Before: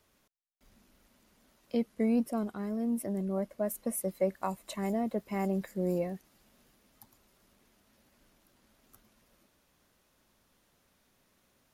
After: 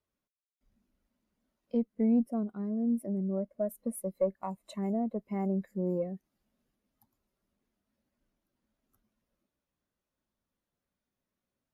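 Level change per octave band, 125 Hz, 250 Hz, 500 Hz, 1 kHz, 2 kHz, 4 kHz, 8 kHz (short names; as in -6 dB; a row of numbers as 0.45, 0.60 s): +0.5 dB, +1.5 dB, -1.0 dB, -3.5 dB, under -10 dB, n/a, -8.0 dB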